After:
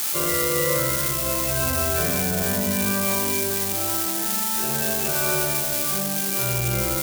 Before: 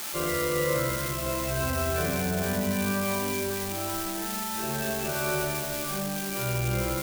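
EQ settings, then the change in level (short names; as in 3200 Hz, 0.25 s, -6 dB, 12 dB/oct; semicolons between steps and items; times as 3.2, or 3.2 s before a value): HPF 44 Hz; high shelf 4400 Hz +9 dB; +2.5 dB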